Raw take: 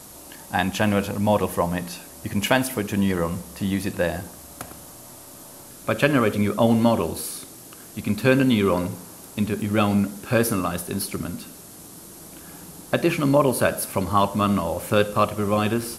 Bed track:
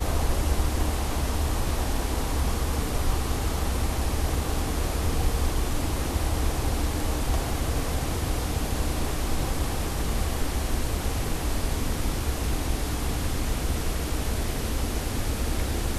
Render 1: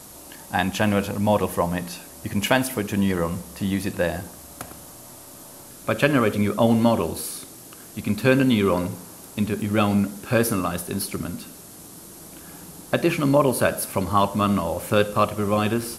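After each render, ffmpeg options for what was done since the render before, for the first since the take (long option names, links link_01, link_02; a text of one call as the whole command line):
ffmpeg -i in.wav -af anull out.wav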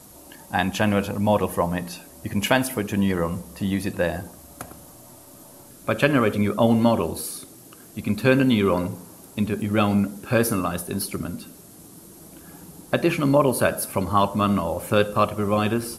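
ffmpeg -i in.wav -af "afftdn=noise_reduction=6:noise_floor=-43" out.wav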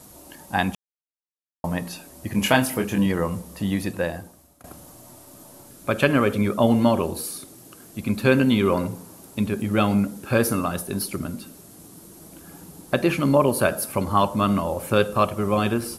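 ffmpeg -i in.wav -filter_complex "[0:a]asettb=1/sr,asplit=3[link_01][link_02][link_03];[link_01]atrim=end=2.324[link_04];[link_02]atrim=start=2.32:end=3.06,asetpts=PTS-STARTPTS,afade=type=in:duration=0.004:curve=qsin,afade=type=out:start_time=0.736:duration=0.004:curve=qsin,asplit=2[link_05][link_06];[link_06]adelay=24,volume=-4.5dB[link_07];[link_05][link_07]amix=inputs=2:normalize=0,atrim=end_sample=32634[link_08];[link_03]atrim=start=3.056[link_09];[link_04][link_08]acrossfade=duration=0.004:curve1=hsin:curve2=qsin[link_10];[link_10][link_09]acrossfade=duration=0.004:curve1=qsin:curve2=hsin,asplit=4[link_11][link_12][link_13][link_14];[link_11]atrim=end=0.75,asetpts=PTS-STARTPTS,afade=type=out:start_time=0.746:duration=0.004:curve=hsin[link_15];[link_12]atrim=start=0.75:end=1.64,asetpts=PTS-STARTPTS,volume=0[link_16];[link_13]atrim=start=1.64:end=4.64,asetpts=PTS-STARTPTS,afade=type=in:duration=0.004:curve=hsin,afade=type=out:start_time=2.18:duration=0.82:silence=0.11885[link_17];[link_14]atrim=start=4.64,asetpts=PTS-STARTPTS,afade=type=in:duration=0.004:curve=hsin:silence=0.11885[link_18];[link_15][link_16][link_17][link_18]concat=n=4:v=0:a=1" out.wav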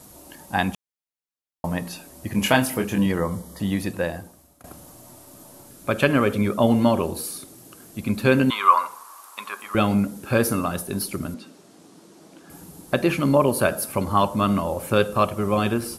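ffmpeg -i in.wav -filter_complex "[0:a]asettb=1/sr,asplit=3[link_01][link_02][link_03];[link_01]atrim=end=3.204[link_04];[link_02]atrim=start=3.2:end=3.6,asetpts=PTS-STARTPTS,afade=type=in:duration=0.004:curve=qsin,afade=type=out:start_time=0.396:duration=0.004:curve=qsin,asuperstop=centerf=2600:order=20:qfactor=4.4[link_05];[link_03]atrim=start=3.596[link_06];[link_04][link_05]acrossfade=duration=0.004:curve1=hsin:curve2=qsin[link_07];[link_07][link_06]acrossfade=duration=0.004:curve1=qsin:curve2=hsin,asettb=1/sr,asplit=3[link_08][link_09][link_10];[link_08]atrim=end=8.504[link_11];[link_09]atrim=start=8.5:end=9.75,asetpts=PTS-STARTPTS,afade=type=in:duration=0.004:curve=qsin,afade=type=out:start_time=1.246:duration=0.004:curve=qsin,highpass=frequency=1100:width_type=q:width=6.9[link_12];[link_10]atrim=start=9.746[link_13];[link_11][link_12]acrossfade=duration=0.004:curve1=hsin:curve2=qsin[link_14];[link_14][link_13]acrossfade=duration=0.004:curve1=qsin:curve2=hsin,asettb=1/sr,asplit=3[link_15][link_16][link_17];[link_15]atrim=end=11.344[link_18];[link_16]atrim=start=11.34:end=12.5,asetpts=PTS-STARTPTS,afade=type=in:duration=0.004:curve=qsin,afade=type=out:start_time=1.156:duration=0.004:curve=qsin,highpass=220,lowpass=5600[link_19];[link_17]atrim=start=12.496[link_20];[link_18][link_19]acrossfade=duration=0.004:curve1=hsin:curve2=qsin[link_21];[link_21][link_20]acrossfade=duration=0.004:curve1=qsin:curve2=hsin" out.wav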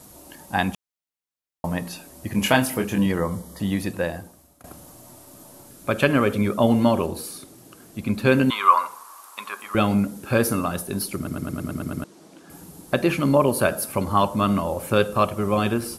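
ffmpeg -i in.wav -filter_complex "[0:a]asettb=1/sr,asplit=3[link_01][link_02][link_03];[link_01]atrim=end=7.064[link_04];[link_02]atrim=start=7.06:end=8.27,asetpts=PTS-STARTPTS,afade=type=in:duration=0.004:curve=qsin,afade=type=out:start_time=1.206:duration=0.004:curve=qsin,highshelf=frequency=6300:gain=-5[link_05];[link_03]atrim=start=8.266[link_06];[link_04][link_05]acrossfade=duration=0.004:curve1=hsin:curve2=qsin[link_07];[link_07][link_06]acrossfade=duration=0.004:curve1=qsin:curve2=hsin,asplit=9[link_08][link_09][link_10][link_11][link_12][link_13][link_14][link_15][link_16];[link_08]atrim=end=11.272[link_17];[link_09]atrim=start=11.158:end=11.272[link_18];[link_10]atrim=start=11.158:end=11.272[link_19];[link_11]atrim=start=11.158:end=11.272[link_20];[link_12]atrim=start=11.158:end=11.272[link_21];[link_13]atrim=start=11.158:end=11.272[link_22];[link_14]atrim=start=11.158:end=11.272[link_23];[link_15]atrim=start=11.158:end=11.272[link_24];[link_16]atrim=start=12.038[link_25];[link_17][link_18]acrossfade=duration=0.004:curve1=hsin:curve2=hsin[link_26];[link_26][link_19]acrossfade=duration=0.004:curve1=hsin:curve2=hsin[link_27];[link_27][link_20]acrossfade=duration=0.004:curve1=hsin:curve2=hsin[link_28];[link_28][link_21]acrossfade=duration=0.004:curve1=hsin:curve2=hsin[link_29];[link_29][link_22]acrossfade=duration=0.004:curve1=hsin:curve2=hsin[link_30];[link_30][link_23]acrossfade=duration=0.004:curve1=hsin:curve2=hsin[link_31];[link_31][link_24]acrossfade=duration=0.004:curve1=hsin:curve2=hsin[link_32];[link_32][link_25]acrossfade=duration=0.004:curve1=hsin:curve2=hsin" out.wav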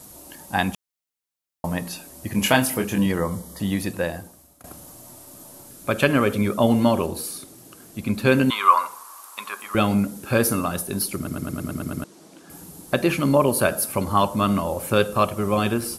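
ffmpeg -i in.wav -af "highshelf=frequency=4500:gain=4.5" out.wav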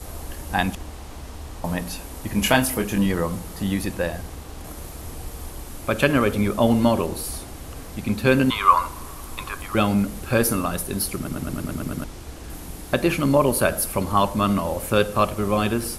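ffmpeg -i in.wav -i bed.wav -filter_complex "[1:a]volume=-10.5dB[link_01];[0:a][link_01]amix=inputs=2:normalize=0" out.wav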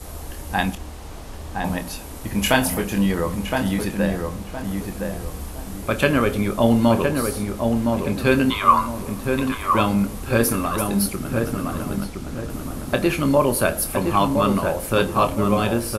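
ffmpeg -i in.wav -filter_complex "[0:a]asplit=2[link_01][link_02];[link_02]adelay=26,volume=-10.5dB[link_03];[link_01][link_03]amix=inputs=2:normalize=0,asplit=2[link_04][link_05];[link_05]adelay=1015,lowpass=frequency=1600:poles=1,volume=-4dB,asplit=2[link_06][link_07];[link_07]adelay=1015,lowpass=frequency=1600:poles=1,volume=0.35,asplit=2[link_08][link_09];[link_09]adelay=1015,lowpass=frequency=1600:poles=1,volume=0.35,asplit=2[link_10][link_11];[link_11]adelay=1015,lowpass=frequency=1600:poles=1,volume=0.35[link_12];[link_06][link_08][link_10][link_12]amix=inputs=4:normalize=0[link_13];[link_04][link_13]amix=inputs=2:normalize=0" out.wav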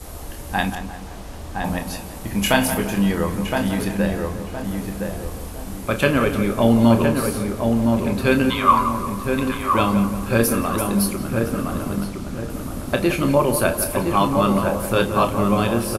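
ffmpeg -i in.wav -filter_complex "[0:a]asplit=2[link_01][link_02];[link_02]adelay=35,volume=-12.5dB[link_03];[link_01][link_03]amix=inputs=2:normalize=0,asplit=2[link_04][link_05];[link_05]adelay=175,lowpass=frequency=2000:poles=1,volume=-9dB,asplit=2[link_06][link_07];[link_07]adelay=175,lowpass=frequency=2000:poles=1,volume=0.54,asplit=2[link_08][link_09];[link_09]adelay=175,lowpass=frequency=2000:poles=1,volume=0.54,asplit=2[link_10][link_11];[link_11]adelay=175,lowpass=frequency=2000:poles=1,volume=0.54,asplit=2[link_12][link_13];[link_13]adelay=175,lowpass=frequency=2000:poles=1,volume=0.54,asplit=2[link_14][link_15];[link_15]adelay=175,lowpass=frequency=2000:poles=1,volume=0.54[link_16];[link_04][link_06][link_08][link_10][link_12][link_14][link_16]amix=inputs=7:normalize=0" out.wav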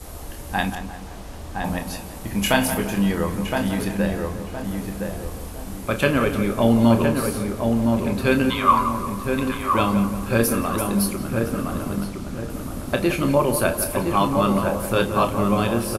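ffmpeg -i in.wav -af "volume=-1.5dB" out.wav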